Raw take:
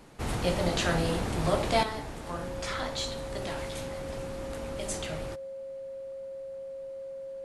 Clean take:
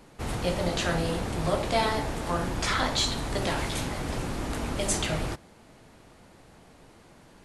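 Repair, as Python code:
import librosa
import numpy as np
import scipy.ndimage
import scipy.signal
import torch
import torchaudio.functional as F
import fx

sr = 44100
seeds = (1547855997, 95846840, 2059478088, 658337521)

y = fx.notch(x, sr, hz=540.0, q=30.0)
y = fx.gain(y, sr, db=fx.steps((0.0, 0.0), (1.83, 8.0)))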